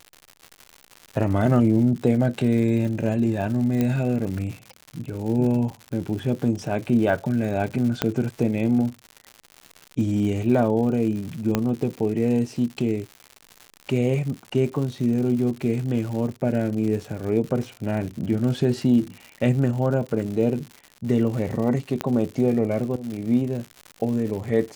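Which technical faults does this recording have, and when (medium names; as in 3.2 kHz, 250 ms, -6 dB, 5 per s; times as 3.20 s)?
crackle 160 per s -31 dBFS
3.81 s: pop -11 dBFS
8.02 s: pop -6 dBFS
11.55 s: pop -7 dBFS
22.01 s: pop -10 dBFS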